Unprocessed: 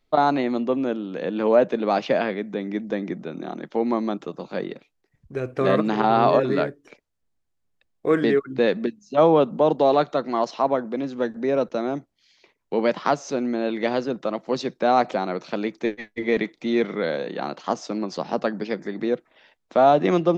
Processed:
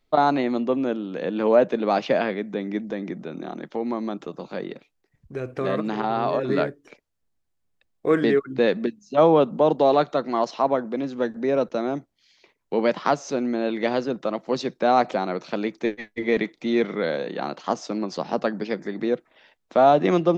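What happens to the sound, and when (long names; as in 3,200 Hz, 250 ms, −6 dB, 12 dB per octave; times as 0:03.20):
0:02.81–0:06.49: downward compressor 1.5 to 1, threshold −29 dBFS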